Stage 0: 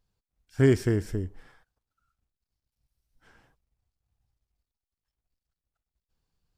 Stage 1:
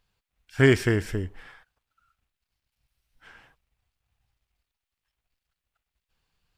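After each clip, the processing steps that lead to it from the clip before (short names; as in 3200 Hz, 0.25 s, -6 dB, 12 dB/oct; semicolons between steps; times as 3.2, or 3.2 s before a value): EQ curve 320 Hz 0 dB, 2700 Hz +12 dB, 5500 Hz +3 dB; gain +1 dB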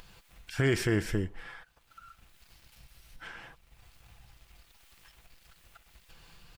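comb 5.9 ms, depth 31%; upward compressor, threshold -37 dBFS; limiter -18 dBFS, peak gain reduction 10 dB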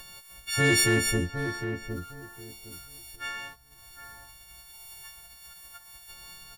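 frequency quantiser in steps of 4 st; sample leveller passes 1; on a send: darkening echo 0.76 s, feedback 22%, low-pass 1400 Hz, level -7.5 dB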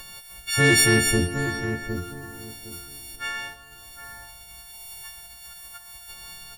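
plate-style reverb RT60 2.8 s, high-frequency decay 0.75×, DRR 10.5 dB; gain +4.5 dB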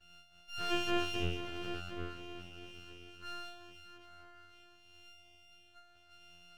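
octave resonator F, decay 0.32 s; diffused feedback echo 0.481 s, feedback 56%, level -11 dB; half-wave rectifier; gain -3.5 dB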